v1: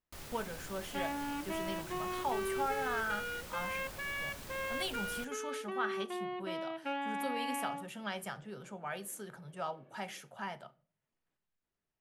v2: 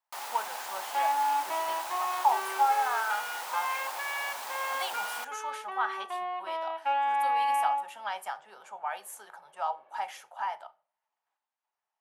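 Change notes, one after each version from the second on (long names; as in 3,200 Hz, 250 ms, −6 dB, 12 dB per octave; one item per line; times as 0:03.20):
first sound +8.0 dB
second sound: send +11.5 dB
master: add high-pass with resonance 850 Hz, resonance Q 4.5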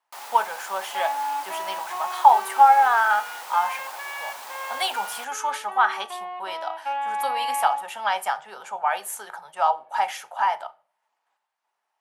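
speech +11.0 dB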